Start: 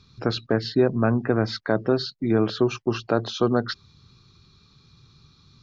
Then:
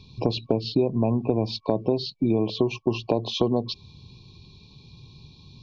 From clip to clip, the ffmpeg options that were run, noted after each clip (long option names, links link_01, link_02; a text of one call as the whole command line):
ffmpeg -i in.wav -af "lowpass=4400,afftfilt=real='re*(1-between(b*sr/4096,1100,2300))':imag='im*(1-between(b*sr/4096,1100,2300))':win_size=4096:overlap=0.75,acompressor=threshold=-27dB:ratio=4,volume=7dB" out.wav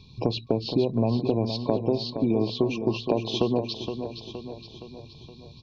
ffmpeg -i in.wav -af "aecho=1:1:468|936|1404|1872|2340|2808:0.376|0.199|0.106|0.056|0.0297|0.0157,volume=-1.5dB" out.wav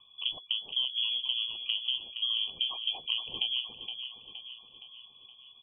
ffmpeg -i in.wav -af "lowpass=frequency=3000:width_type=q:width=0.5098,lowpass=frequency=3000:width_type=q:width=0.6013,lowpass=frequency=3000:width_type=q:width=0.9,lowpass=frequency=3000:width_type=q:width=2.563,afreqshift=-3500,volume=-8dB" out.wav